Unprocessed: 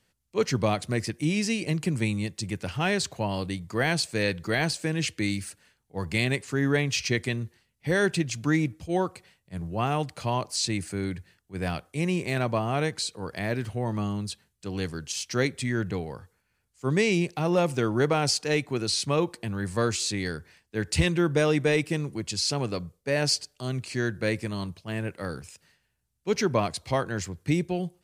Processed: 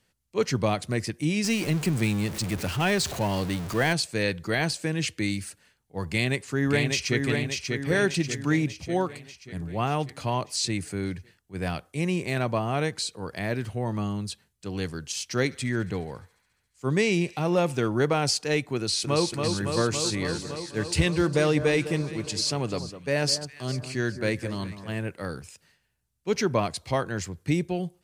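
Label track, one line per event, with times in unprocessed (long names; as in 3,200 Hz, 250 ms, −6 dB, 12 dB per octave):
1.440000	3.930000	converter with a step at zero of −30.5 dBFS
6.070000	7.240000	delay throw 590 ms, feedback 55%, level −4 dB
15.280000	17.880000	feedback echo with a high-pass in the loop 70 ms, feedback 82%, high-pass 840 Hz, level −22 dB
18.760000	19.290000	delay throw 280 ms, feedback 80%, level −4.5 dB
19.840000	24.990000	delay that swaps between a low-pass and a high-pass 203 ms, split 1,500 Hz, feedback 58%, level −11 dB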